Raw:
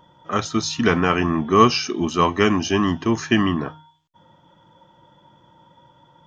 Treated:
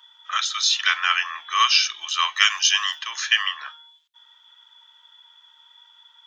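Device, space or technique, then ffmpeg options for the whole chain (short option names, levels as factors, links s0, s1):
headphones lying on a table: -filter_complex "[0:a]highpass=f=1400:w=0.5412,highpass=f=1400:w=1.3066,equalizer=f=3500:t=o:w=0.41:g=9.5,asettb=1/sr,asplit=3[s0][s1][s2];[s0]atrim=end=2.364[s3];[s1]atrim=start=2.36:end=2.99,asetpts=PTS-STARTPTS,afade=t=in:d=0.004:c=qsin,afade=t=out:st=0.626:d=0.004:c=qsin,aemphasis=mode=production:type=50fm[s4];[s2]atrim=start=2.986[s5];[s3][s4]acrossfade=d=0.004:c1=hsin:c2=qsin[s6];[s6][s5]acrossfade=d=0.004:c1=qsin:c2=hsin,volume=1.58"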